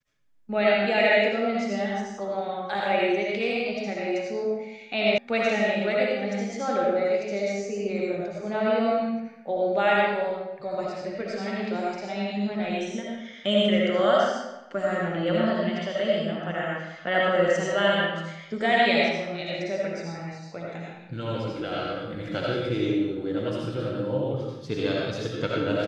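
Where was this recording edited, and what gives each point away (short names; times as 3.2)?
5.18 sound cut off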